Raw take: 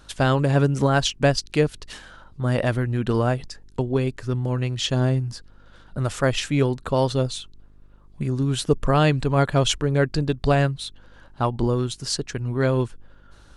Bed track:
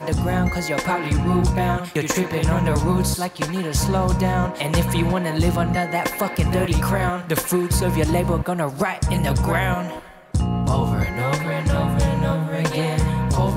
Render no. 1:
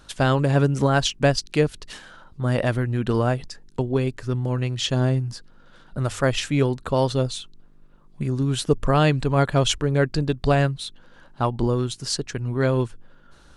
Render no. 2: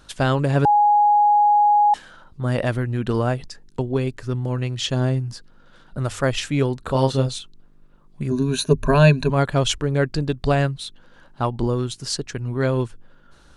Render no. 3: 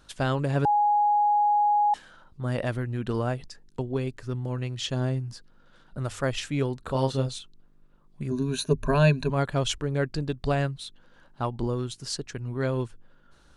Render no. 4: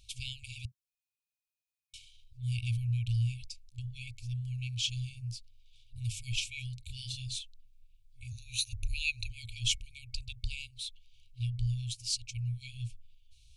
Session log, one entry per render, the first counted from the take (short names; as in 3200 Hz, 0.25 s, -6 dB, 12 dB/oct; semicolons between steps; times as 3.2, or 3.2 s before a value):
de-hum 50 Hz, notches 2
0.65–1.94 bleep 830 Hz -12 dBFS; 6.81–7.39 doubler 30 ms -4.5 dB; 8.3–9.3 ripple EQ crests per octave 1.5, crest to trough 16 dB
gain -6.5 dB
dynamic EQ 130 Hz, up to +4 dB, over -36 dBFS, Q 0.82; FFT band-reject 120–2200 Hz